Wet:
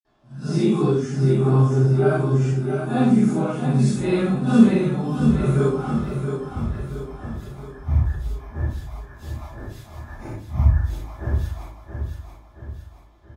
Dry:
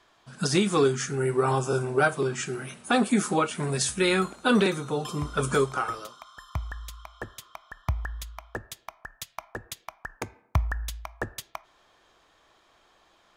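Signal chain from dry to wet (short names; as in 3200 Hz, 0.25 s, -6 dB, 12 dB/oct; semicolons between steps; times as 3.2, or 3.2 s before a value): phase scrambler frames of 0.2 s; low shelf 450 Hz +8 dB; feedback echo 0.676 s, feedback 49%, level -7 dB; reverb RT60 0.35 s, pre-delay 46 ms; gain +1.5 dB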